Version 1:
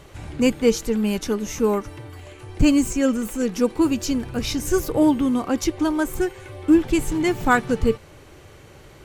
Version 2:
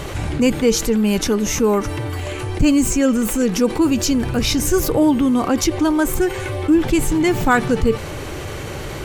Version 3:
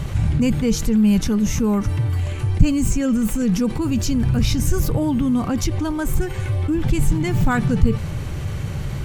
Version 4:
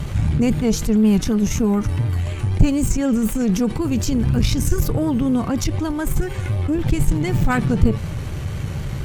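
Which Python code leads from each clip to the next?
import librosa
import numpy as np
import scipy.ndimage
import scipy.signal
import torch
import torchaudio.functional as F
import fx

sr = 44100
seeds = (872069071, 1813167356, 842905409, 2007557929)

y1 = fx.env_flatten(x, sr, amount_pct=50)
y2 = fx.low_shelf_res(y1, sr, hz=240.0, db=11.0, q=1.5)
y2 = y2 * 10.0 ** (-6.5 / 20.0)
y3 = fx.vibrato(y2, sr, rate_hz=4.0, depth_cents=54.0)
y3 = fx.cheby_harmonics(y3, sr, harmonics=(6,), levels_db=(-22,), full_scale_db=-1.0)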